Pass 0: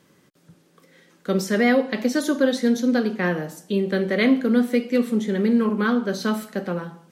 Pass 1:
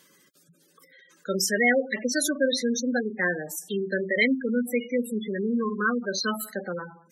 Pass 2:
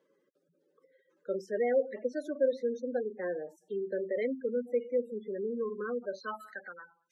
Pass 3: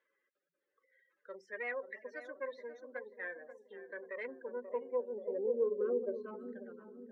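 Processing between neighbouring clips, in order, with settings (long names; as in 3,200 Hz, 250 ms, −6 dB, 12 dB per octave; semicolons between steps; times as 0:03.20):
spectral tilt +3.5 dB per octave; gate on every frequency bin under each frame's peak −10 dB strong
band-pass filter sweep 490 Hz → 3,300 Hz, 0:05.96–0:07.03; level −1.5 dB
phase distortion by the signal itself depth 0.09 ms; feedback echo with a low-pass in the loop 535 ms, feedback 56%, low-pass 890 Hz, level −9 dB; band-pass filter sweep 1,900 Hz → 280 Hz, 0:03.89–0:06.42; level +4 dB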